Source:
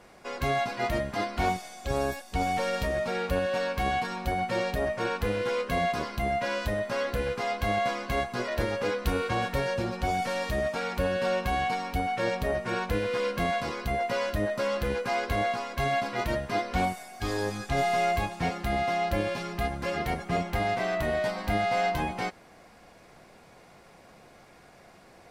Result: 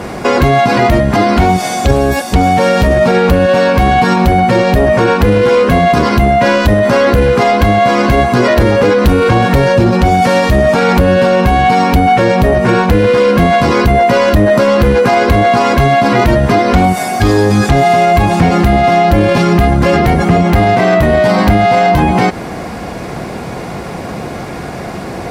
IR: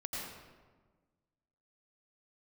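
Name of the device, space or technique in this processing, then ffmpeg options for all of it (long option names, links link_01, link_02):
mastering chain: -af "highpass=49,equalizer=frequency=570:width_type=o:width=0.56:gain=-3,acompressor=threshold=-32dB:ratio=3,asoftclip=type=tanh:threshold=-24dB,tiltshelf=frequency=800:gain=5,asoftclip=type=hard:threshold=-25dB,alimiter=level_in=31.5dB:limit=-1dB:release=50:level=0:latency=1,volume=-1dB"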